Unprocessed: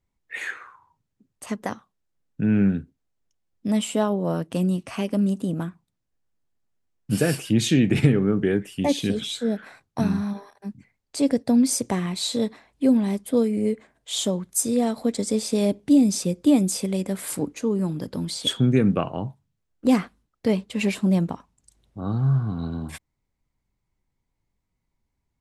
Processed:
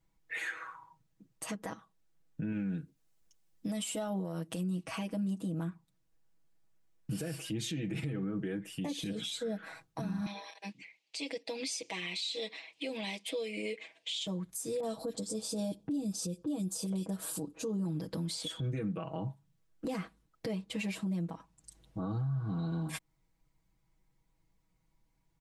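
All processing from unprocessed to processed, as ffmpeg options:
-filter_complex "[0:a]asettb=1/sr,asplit=3[a][b][c];[a]atrim=end=2.524[d];[b]atrim=start=2.52:end=4.61,asetpts=PTS-STARTPTS,afade=t=in:d=0.004:c=qsin,afade=t=out:st=2.086:d=0.004:c=qsin,highshelf=f=3.7k:g=7.5,acompressor=threshold=-22dB:ratio=2:attack=3.2:release=140:knee=1:detection=peak[e];[c]atrim=start=4.606[f];[d][e]acrossfade=d=0.004:c1=hsin:c2=qsin[g];[g][f]acrossfade=d=0.004:c1=qsin:c2=hsin,asettb=1/sr,asplit=3[h][i][j];[h]atrim=end=10.264[k];[i]atrim=start=10.26:end=14.27,asetpts=PTS-STARTPTS,afade=t=in:d=0.004:c=qsin,afade=t=out:st=4.006:d=0.004:c=qsin,highpass=440,lowpass=4.9k,highshelf=f=1.9k:t=q:w=3:g=9[l];[j]atrim=start=14.266[m];[k][l]acrossfade=d=0.004:c1=hsin:c2=qsin[n];[n][m]acrossfade=d=0.004:c1=qsin:c2=hsin,asettb=1/sr,asplit=3[o][p][q];[o]atrim=end=14.804[r];[p]atrim=start=14.8:end=17.85,asetpts=PTS-STARTPTS,afade=t=in:d=0.004:c=qsin,afade=t=out:st=3.046:d=0.004:c=qsin,equalizer=f=2.1k:w=4:g=-14,acrossover=split=2000[s][t];[t]adelay=30[u];[s][u]amix=inputs=2:normalize=0,atrim=end_sample=134505[v];[q]atrim=start=17.846[w];[r][v]acrossfade=d=0.004:c1=hsin:c2=qsin[x];[x][w]acrossfade=d=0.004:c1=qsin:c2=hsin,aecho=1:1:6.2:0.93,acompressor=threshold=-37dB:ratio=2,alimiter=level_in=4.5dB:limit=-24dB:level=0:latency=1:release=109,volume=-4.5dB"

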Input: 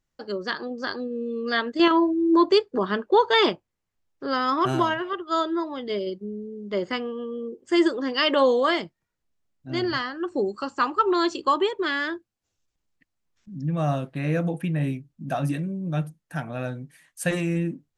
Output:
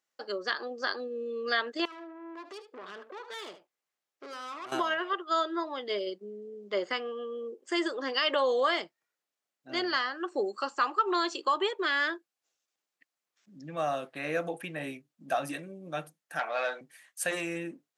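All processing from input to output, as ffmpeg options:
-filter_complex "[0:a]asettb=1/sr,asplit=3[a][b][c];[a]atrim=end=1.854[d];[b]atrim=start=1.85:end=4.72,asetpts=PTS-STARTPTS,afade=t=in:d=0.004:c=qsin,afade=t=out:st=2.866:d=0.004:c=qsin,acompressor=threshold=-30dB:ratio=10:attack=3.2:release=140:knee=1:detection=peak,aeval=exprs='(tanh(63.1*val(0)+0.35)-tanh(0.35))/63.1':c=same,aecho=1:1:75:0.251,atrim=end_sample=126567[e];[c]atrim=start=4.716[f];[d][e]acrossfade=d=0.004:c1=hsin:c2=qsin[g];[g][f]acrossfade=d=0.004:c1=qsin:c2=hsin,asettb=1/sr,asplit=3[h][i][j];[h]atrim=end=16.394[k];[i]atrim=start=16.39:end=16.81,asetpts=PTS-STARTPTS,afade=t=in:d=0.004:c=qsin,afade=t=out:st=0.416:d=0.004:c=qsin,asplit=2[l][m];[m]highpass=f=720:p=1,volume=17dB,asoftclip=type=tanh:threshold=-17.5dB[n];[l][n]amix=inputs=2:normalize=0,lowpass=f=4.1k:p=1,volume=-6dB,highpass=460,lowpass=5.9k[o];[j]atrim=start=16.806[p];[k][o]acrossfade=d=0.004:c1=hsin:c2=qsin[q];[q][p]acrossfade=d=0.004:c1=qsin:c2=hsin,alimiter=limit=-15.5dB:level=0:latency=1:release=166,highpass=510,bandreject=f=950:w=14"

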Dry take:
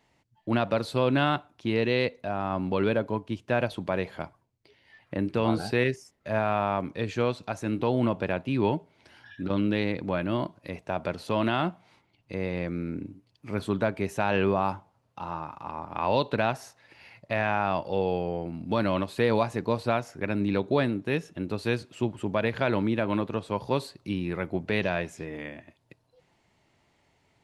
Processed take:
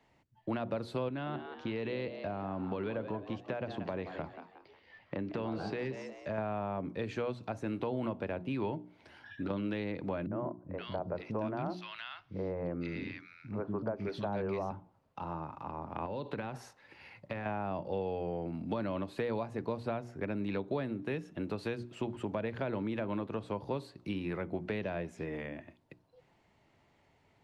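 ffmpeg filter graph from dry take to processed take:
-filter_complex "[0:a]asettb=1/sr,asplit=3[a][b][c];[a]atrim=end=1.084[d];[b]atrim=start=1.08:end=6.38,asetpts=PTS-STARTPTS,afade=t=in:d=0.004:c=qsin,afade=t=out:st=5.296:d=0.004:c=qsin,lowpass=f=6.7k:w=0.5412,lowpass=f=6.7k:w=1.3066,acompressor=threshold=-29dB:ratio=2.5:attack=3.2:release=140:knee=1:detection=peak,asplit=5[e][f][g][h][i];[f]adelay=181,afreqshift=93,volume=-11.5dB[j];[g]adelay=362,afreqshift=186,volume=-20.1dB[k];[h]adelay=543,afreqshift=279,volume=-28.8dB[l];[i]adelay=724,afreqshift=372,volume=-37.4dB[m];[e][j][k][l][m]amix=inputs=5:normalize=0,atrim=end_sample=233730[n];[c]atrim=start=6.376[o];[d][n]acrossfade=d=0.004:c1=hsin:c2=qsin[p];[p][o]acrossfade=d=0.004:c1=qsin:c2=hsin,asettb=1/sr,asplit=3[q][r][s];[q]atrim=end=10.264[t];[r]atrim=start=10.26:end=14.71,asetpts=PTS-STARTPTS,afade=t=in:d=0.004:c=qsin,afade=t=out:st=4.446:d=0.004:c=qsin,highshelf=f=6.6k:t=q:w=3:g=-6.5,acrossover=split=270|1400[u][v][w];[v]adelay=50[x];[w]adelay=520[y];[u][x][y]amix=inputs=3:normalize=0,atrim=end_sample=196245[z];[s]atrim=start=14.706[aa];[t][z]acrossfade=d=0.004:c1=hsin:c2=qsin[ab];[ab][aa]acrossfade=d=0.004:c1=qsin:c2=hsin,asettb=1/sr,asplit=3[ac][ad][ae];[ac]atrim=end=16.054[af];[ad]atrim=start=16.05:end=17.46,asetpts=PTS-STARTPTS,afade=t=in:d=0.004:c=qsin,afade=t=out:st=1.406:d=0.004:c=qsin,bandreject=f=660:w=7.3,acompressor=threshold=-29dB:ratio=6:attack=3.2:release=140:knee=1:detection=peak[ag];[ae]atrim=start=17.456[ah];[af][ag]acrossfade=d=0.004:c1=hsin:c2=qsin[ai];[ai][ah]acrossfade=d=0.004:c1=qsin:c2=hsin,highshelf=f=3.9k:g=-10,bandreject=f=60:t=h:w=6,bandreject=f=120:t=h:w=6,bandreject=f=180:t=h:w=6,bandreject=f=240:t=h:w=6,bandreject=f=300:t=h:w=6,bandreject=f=360:t=h:w=6,acrossover=split=160|600[aj][ak][al];[aj]acompressor=threshold=-46dB:ratio=4[am];[ak]acompressor=threshold=-36dB:ratio=4[an];[al]acompressor=threshold=-42dB:ratio=4[ao];[am][an][ao]amix=inputs=3:normalize=0"

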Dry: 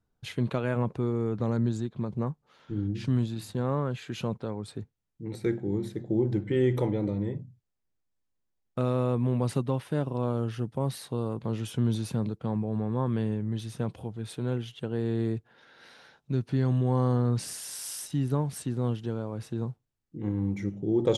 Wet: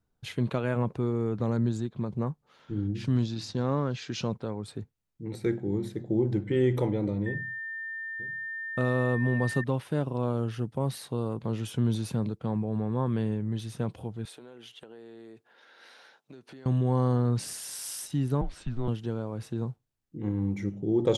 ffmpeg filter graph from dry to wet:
-filter_complex "[0:a]asettb=1/sr,asplit=3[a][b][c];[a]atrim=end=3.154[d];[b]atrim=start=3.15:end=4.32,asetpts=PTS-STARTPTS,afade=t=in:d=0.004:c=qsin,afade=t=out:st=1.166:d=0.004:c=qsin,lowpass=f=5.5k:t=q:w=3.8,equalizer=f=280:t=o:w=0.21:g=4[e];[c]atrim=start=4.316[f];[d][e]acrossfade=d=0.004:c1=hsin:c2=qsin[g];[g][f]acrossfade=d=0.004:c1=qsin:c2=hsin,asettb=1/sr,asplit=3[h][i][j];[h]atrim=end=7.264[k];[i]atrim=start=7.26:end=9.64,asetpts=PTS-STARTPTS,afade=t=in:d=0.004:c=qsin,afade=t=out:st=2.376:d=0.004:c=qsin,aeval=exprs='val(0)+0.02*sin(2*PI*1800*n/s)':c=same,aecho=1:1:934:0.141,atrim=end_sample=104958[l];[j]atrim=start=9.636[m];[k][l]acrossfade=d=0.004:c1=hsin:c2=qsin[n];[n][m]acrossfade=d=0.004:c1=qsin:c2=hsin,asettb=1/sr,asplit=3[o][p][q];[o]atrim=end=14.254[r];[p]atrim=start=14.25:end=16.66,asetpts=PTS-STARTPTS,afade=t=in:d=0.004:c=qsin,afade=t=out:st=2.406:d=0.004:c=qsin,highpass=370,acompressor=threshold=-43dB:ratio=16:attack=3.2:release=140:knee=1:detection=peak[s];[q]atrim=start=16.656[t];[r][s]acrossfade=d=0.004:c1=hsin:c2=qsin[u];[u][t]acrossfade=d=0.004:c1=qsin:c2=hsin,asettb=1/sr,asplit=3[v][w][x];[v]atrim=end=18.414[y];[w]atrim=start=18.41:end=18.88,asetpts=PTS-STARTPTS,afade=t=in:d=0.004:c=qsin,afade=t=out:st=0.466:d=0.004:c=qsin,lowpass=4.2k,afreqshift=-120[z];[x]atrim=start=18.876[aa];[y][z]acrossfade=d=0.004:c1=hsin:c2=qsin[ab];[ab][aa]acrossfade=d=0.004:c1=qsin:c2=hsin"

